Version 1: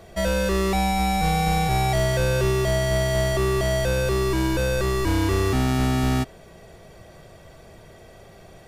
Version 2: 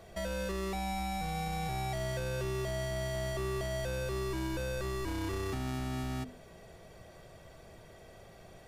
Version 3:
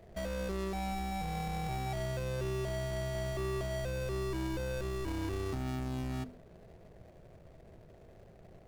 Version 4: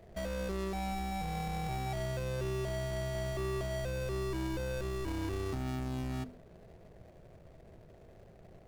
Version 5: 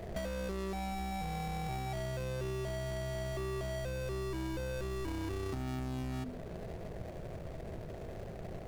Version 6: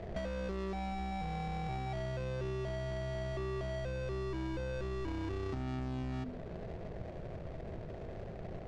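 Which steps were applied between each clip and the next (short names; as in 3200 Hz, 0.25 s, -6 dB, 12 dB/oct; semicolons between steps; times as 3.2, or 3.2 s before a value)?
notches 50/100/150/200/250/300/350/400/450 Hz; limiter -22.5 dBFS, peak gain reduction 9.5 dB; gain -6.5 dB
median filter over 41 samples
nothing audible
limiter -36.5 dBFS, peak gain reduction 7 dB; compressor 4:1, threshold -48 dBFS, peak gain reduction 8 dB; gain +12 dB
air absorption 120 m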